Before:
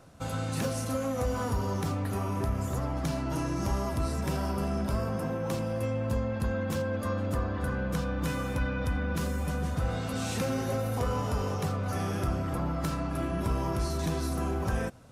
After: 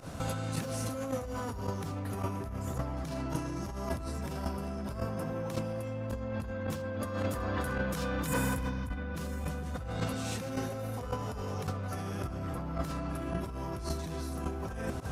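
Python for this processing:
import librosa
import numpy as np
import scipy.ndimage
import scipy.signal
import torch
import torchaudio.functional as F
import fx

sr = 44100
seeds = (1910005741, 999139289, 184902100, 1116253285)

p1 = x + fx.echo_single(x, sr, ms=371, db=-22.0, dry=0)
p2 = fx.volume_shaper(p1, sr, bpm=108, per_beat=1, depth_db=-17, release_ms=92.0, shape='fast start')
p3 = 10.0 ** (-30.5 / 20.0) * np.tanh(p2 / 10.0 ** (-30.5 / 20.0))
p4 = p2 + (p3 * librosa.db_to_amplitude(-6.5))
p5 = fx.tilt_eq(p4, sr, slope=1.5, at=(7.13, 8.69), fade=0.02)
p6 = fx.spec_repair(p5, sr, seeds[0], start_s=8.29, length_s=0.56, low_hz=300.0, high_hz=6600.0, source='after')
p7 = fx.over_compress(p6, sr, threshold_db=-37.0, ratio=-1.0)
y = p7 * librosa.db_to_amplitude(1.5)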